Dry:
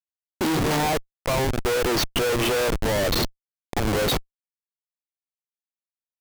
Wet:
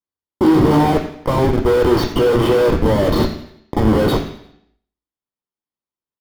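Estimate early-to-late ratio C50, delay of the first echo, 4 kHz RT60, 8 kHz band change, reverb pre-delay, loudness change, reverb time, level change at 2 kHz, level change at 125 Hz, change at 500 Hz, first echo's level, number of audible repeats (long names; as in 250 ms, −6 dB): 8.5 dB, 87 ms, 0.75 s, −7.0 dB, 3 ms, +8.0 dB, 0.70 s, +0.5 dB, +9.5 dB, +9.0 dB, −15.0 dB, 3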